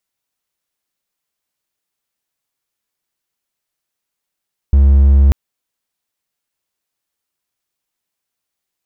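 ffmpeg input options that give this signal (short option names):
-f lavfi -i "aevalsrc='0.668*(1-4*abs(mod(69*t+0.25,1)-0.5))':d=0.59:s=44100"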